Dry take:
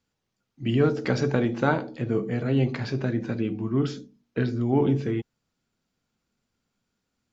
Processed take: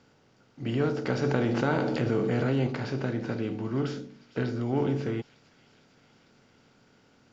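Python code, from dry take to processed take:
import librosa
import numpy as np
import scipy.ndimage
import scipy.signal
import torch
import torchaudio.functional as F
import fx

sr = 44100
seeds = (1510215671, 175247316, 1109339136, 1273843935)

y = fx.bin_compress(x, sr, power=0.6)
y = fx.echo_wet_highpass(y, sr, ms=452, feedback_pct=75, hz=2700.0, wet_db=-16.0)
y = fx.env_flatten(y, sr, amount_pct=70, at=(1.23, 2.67))
y = F.gain(torch.from_numpy(y), -7.5).numpy()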